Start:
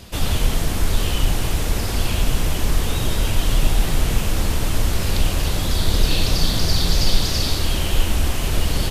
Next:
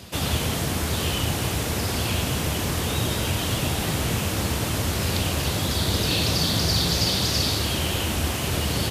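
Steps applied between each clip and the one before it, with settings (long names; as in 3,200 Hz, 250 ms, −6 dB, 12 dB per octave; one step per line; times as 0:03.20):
high-pass filter 76 Hz 24 dB per octave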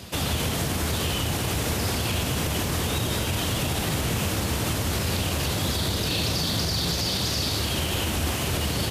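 brickwall limiter −18 dBFS, peak gain reduction 8.5 dB
level +1.5 dB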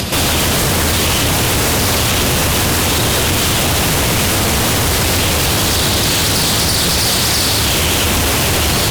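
upward compression, threshold −33 dBFS
sine wavefolder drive 10 dB, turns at −16 dBFS
level +5 dB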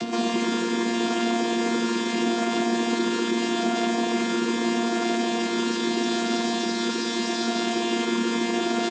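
channel vocoder with a chord as carrier bare fifth, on A#3
on a send: single-tap delay 323 ms −7 dB
on the sum: level −8.5 dB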